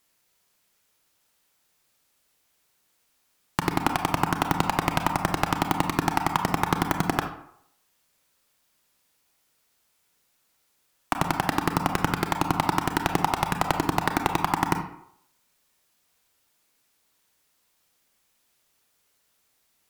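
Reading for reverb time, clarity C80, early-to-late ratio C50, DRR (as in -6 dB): 0.70 s, 12.0 dB, 8.0 dB, 5.5 dB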